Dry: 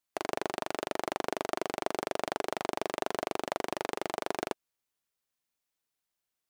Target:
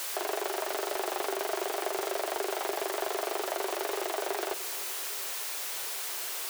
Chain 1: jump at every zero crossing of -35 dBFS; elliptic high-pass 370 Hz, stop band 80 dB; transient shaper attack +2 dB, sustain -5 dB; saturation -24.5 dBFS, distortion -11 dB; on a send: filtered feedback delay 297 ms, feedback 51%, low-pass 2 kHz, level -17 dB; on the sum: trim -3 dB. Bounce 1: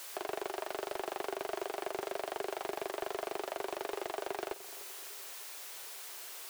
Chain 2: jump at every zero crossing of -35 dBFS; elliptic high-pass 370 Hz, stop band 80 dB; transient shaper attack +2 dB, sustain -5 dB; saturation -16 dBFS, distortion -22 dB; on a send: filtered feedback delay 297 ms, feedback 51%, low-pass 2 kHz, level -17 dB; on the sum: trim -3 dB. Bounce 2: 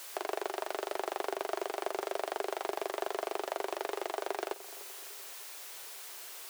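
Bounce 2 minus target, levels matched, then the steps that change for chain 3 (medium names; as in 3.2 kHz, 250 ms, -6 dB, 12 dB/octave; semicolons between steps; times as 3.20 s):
jump at every zero crossing: distortion -8 dB
change: jump at every zero crossing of -24.5 dBFS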